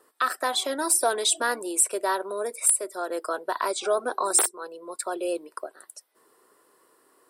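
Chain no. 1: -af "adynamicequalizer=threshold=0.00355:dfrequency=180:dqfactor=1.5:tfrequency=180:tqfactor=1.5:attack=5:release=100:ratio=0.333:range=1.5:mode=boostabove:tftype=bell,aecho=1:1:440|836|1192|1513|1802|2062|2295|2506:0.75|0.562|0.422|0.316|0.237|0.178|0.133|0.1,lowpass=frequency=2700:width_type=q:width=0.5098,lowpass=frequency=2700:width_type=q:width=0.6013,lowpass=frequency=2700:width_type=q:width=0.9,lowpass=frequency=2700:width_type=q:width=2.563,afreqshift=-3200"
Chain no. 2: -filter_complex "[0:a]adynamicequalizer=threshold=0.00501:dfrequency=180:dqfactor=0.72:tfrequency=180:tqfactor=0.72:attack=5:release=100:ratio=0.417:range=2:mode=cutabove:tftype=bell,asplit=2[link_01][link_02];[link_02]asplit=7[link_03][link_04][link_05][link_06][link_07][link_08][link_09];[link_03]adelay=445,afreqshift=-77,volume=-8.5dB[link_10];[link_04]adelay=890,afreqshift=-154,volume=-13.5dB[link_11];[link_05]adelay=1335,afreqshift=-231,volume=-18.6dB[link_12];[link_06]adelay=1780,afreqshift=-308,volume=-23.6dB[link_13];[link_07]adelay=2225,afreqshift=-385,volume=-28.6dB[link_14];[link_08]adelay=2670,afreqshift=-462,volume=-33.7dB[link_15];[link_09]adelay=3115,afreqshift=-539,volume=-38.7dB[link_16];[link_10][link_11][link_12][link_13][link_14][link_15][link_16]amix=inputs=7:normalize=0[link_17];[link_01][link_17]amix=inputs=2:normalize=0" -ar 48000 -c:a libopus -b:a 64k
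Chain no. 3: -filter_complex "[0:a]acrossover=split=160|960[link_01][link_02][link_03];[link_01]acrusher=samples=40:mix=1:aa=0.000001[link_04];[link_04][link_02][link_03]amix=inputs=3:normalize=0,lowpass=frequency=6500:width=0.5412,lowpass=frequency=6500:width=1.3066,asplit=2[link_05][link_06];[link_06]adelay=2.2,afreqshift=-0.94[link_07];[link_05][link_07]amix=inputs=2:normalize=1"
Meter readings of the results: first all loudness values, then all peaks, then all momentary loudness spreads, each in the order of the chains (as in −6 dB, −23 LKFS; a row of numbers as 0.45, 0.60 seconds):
−24.0, −25.0, −32.0 LKFS; −9.0, −8.0, −15.0 dBFS; 8, 15, 11 LU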